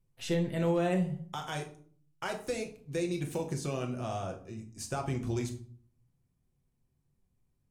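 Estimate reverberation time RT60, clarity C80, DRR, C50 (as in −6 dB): 0.50 s, 15.0 dB, 2.0 dB, 11.0 dB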